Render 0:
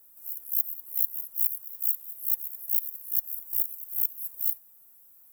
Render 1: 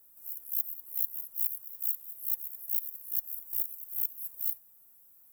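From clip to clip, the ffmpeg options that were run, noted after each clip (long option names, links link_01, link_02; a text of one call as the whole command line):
ffmpeg -i in.wav -filter_complex "[0:a]lowshelf=frequency=210:gain=3.5,asplit=2[link_01][link_02];[link_02]asoftclip=type=tanh:threshold=-25.5dB,volume=-9dB[link_03];[link_01][link_03]amix=inputs=2:normalize=0,volume=-6dB" out.wav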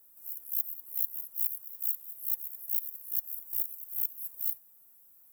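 ffmpeg -i in.wav -af "highpass=100" out.wav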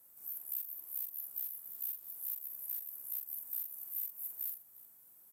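ffmpeg -i in.wav -filter_complex "[0:a]acompressor=threshold=-33dB:ratio=6,asplit=2[link_01][link_02];[link_02]aecho=0:1:44|354:0.531|0.126[link_03];[link_01][link_03]amix=inputs=2:normalize=0,aresample=32000,aresample=44100,volume=1dB" out.wav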